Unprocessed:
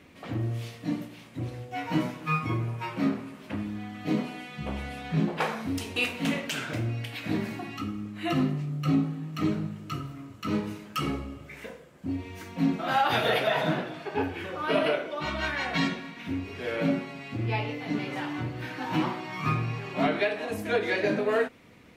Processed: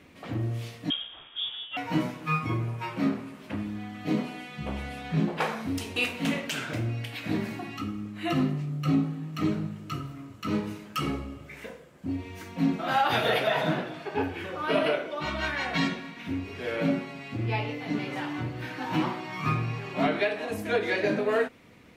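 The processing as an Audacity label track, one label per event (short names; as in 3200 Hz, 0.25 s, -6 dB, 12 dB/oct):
0.900000	1.770000	inverted band carrier 3500 Hz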